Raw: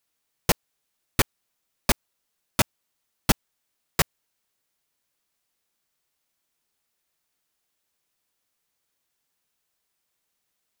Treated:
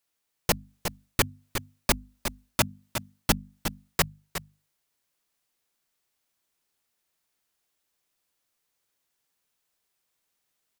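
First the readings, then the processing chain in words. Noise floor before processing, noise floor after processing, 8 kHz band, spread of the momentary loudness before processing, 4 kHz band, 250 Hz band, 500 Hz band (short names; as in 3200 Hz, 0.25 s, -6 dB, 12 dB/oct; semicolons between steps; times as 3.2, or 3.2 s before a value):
-79 dBFS, -79 dBFS, -0.5 dB, 5 LU, -0.5 dB, -1.5 dB, -0.5 dB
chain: notches 50/100/150/200/250 Hz; echo 0.361 s -10.5 dB; vocal rider within 4 dB 0.5 s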